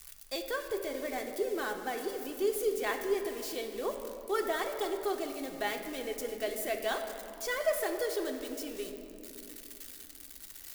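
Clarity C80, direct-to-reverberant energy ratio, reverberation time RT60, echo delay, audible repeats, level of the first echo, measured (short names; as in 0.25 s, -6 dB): 7.5 dB, 3.0 dB, 2.8 s, none, none, none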